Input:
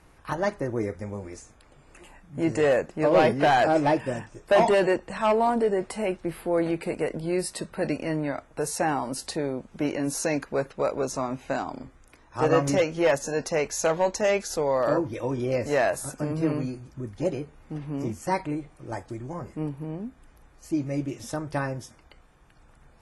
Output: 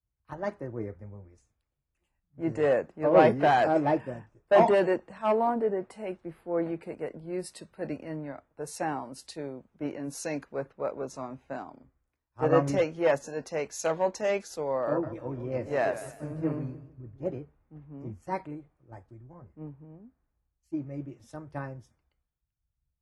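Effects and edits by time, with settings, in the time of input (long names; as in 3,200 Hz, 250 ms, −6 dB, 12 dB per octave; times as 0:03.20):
0:14.87–0:17.38: feedback echo with a swinging delay time 153 ms, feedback 53%, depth 123 cents, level −10 dB
whole clip: high-pass filter 43 Hz; high-shelf EQ 3,000 Hz −10.5 dB; multiband upward and downward expander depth 100%; level −5.5 dB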